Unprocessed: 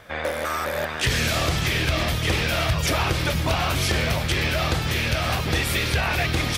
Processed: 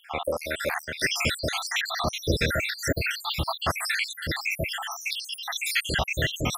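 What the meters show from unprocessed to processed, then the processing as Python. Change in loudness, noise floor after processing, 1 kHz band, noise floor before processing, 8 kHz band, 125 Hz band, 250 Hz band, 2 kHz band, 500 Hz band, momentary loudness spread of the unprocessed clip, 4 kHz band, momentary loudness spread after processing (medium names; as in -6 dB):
-4.5 dB, -45 dBFS, -5.5 dB, -29 dBFS, -3.0 dB, -9.5 dB, -6.5 dB, -3.0 dB, -4.5 dB, 4 LU, -4.0 dB, 5 LU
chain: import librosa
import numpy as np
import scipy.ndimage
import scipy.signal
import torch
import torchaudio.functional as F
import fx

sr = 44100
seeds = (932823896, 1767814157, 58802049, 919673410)

y = fx.spec_dropout(x, sr, seeds[0], share_pct=78)
y = fx.low_shelf(y, sr, hz=220.0, db=-5.0)
y = y * librosa.db_to_amplitude(3.5)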